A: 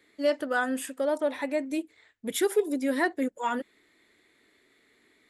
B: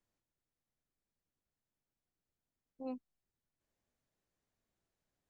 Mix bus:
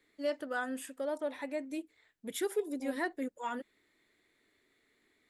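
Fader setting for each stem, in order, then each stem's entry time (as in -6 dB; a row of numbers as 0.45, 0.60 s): -8.5, 0.0 dB; 0.00, 0.00 s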